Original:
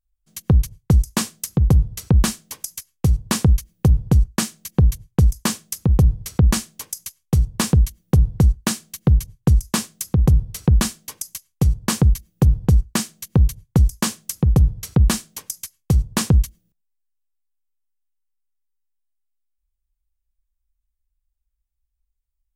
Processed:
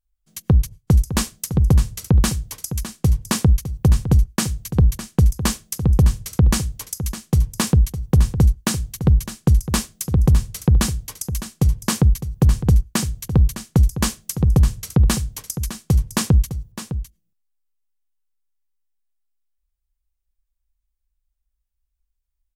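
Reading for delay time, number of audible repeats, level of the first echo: 0.608 s, 1, -11.5 dB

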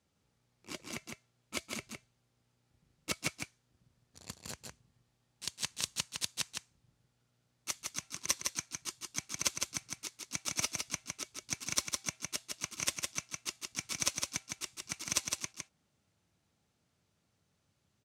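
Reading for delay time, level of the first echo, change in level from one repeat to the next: 0.159 s, -4.0 dB, no steady repeat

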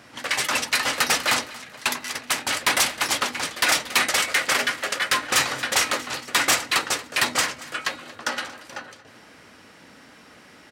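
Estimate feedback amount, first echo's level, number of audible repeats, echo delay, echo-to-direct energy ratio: 45%, -19.0 dB, 3, 0.231 s, -18.0 dB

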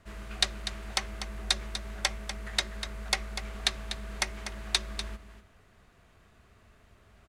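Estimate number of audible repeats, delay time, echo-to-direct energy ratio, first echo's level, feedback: 1, 0.245 s, -10.0 dB, -10.0 dB, no steady repeat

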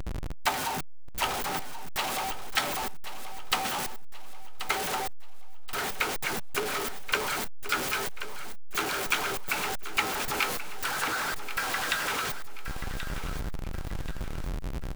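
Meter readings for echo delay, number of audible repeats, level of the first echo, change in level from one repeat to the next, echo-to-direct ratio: 1.081 s, 3, -11.5 dB, -8.0 dB, -11.0 dB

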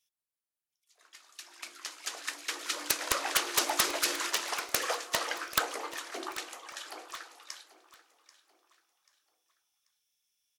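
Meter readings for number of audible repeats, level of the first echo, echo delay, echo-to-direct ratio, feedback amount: 3, -17.0 dB, 0.787 s, -16.5 dB, 37%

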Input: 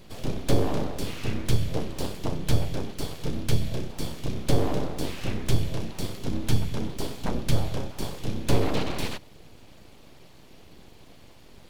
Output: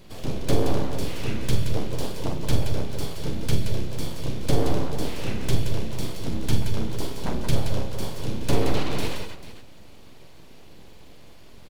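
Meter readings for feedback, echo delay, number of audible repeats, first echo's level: no steady repeat, 46 ms, 3, -7.5 dB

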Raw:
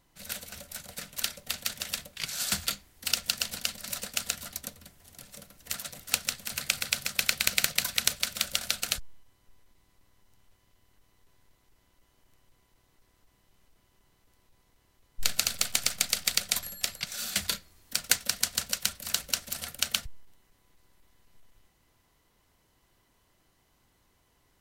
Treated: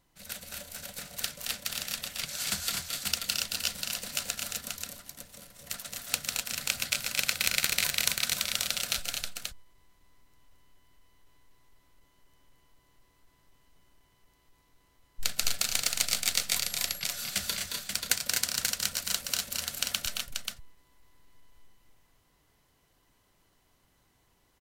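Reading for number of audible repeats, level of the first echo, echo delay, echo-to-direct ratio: 3, -6.0 dB, 0.221 s, -0.5 dB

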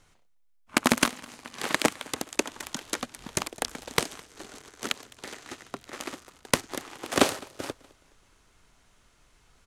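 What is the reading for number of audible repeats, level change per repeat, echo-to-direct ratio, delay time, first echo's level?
2, -7.0 dB, -23.0 dB, 0.21 s, -24.0 dB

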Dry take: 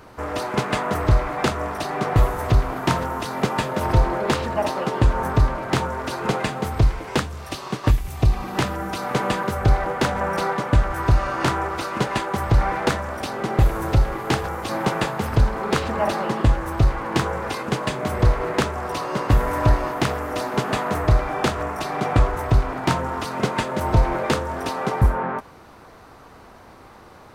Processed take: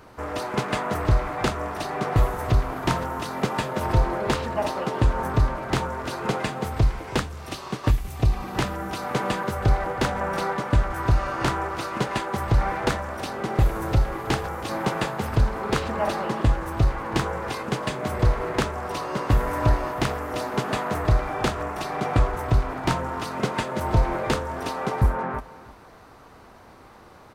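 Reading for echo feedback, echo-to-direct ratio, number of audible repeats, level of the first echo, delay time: 20%, -18.5 dB, 2, -18.5 dB, 0.323 s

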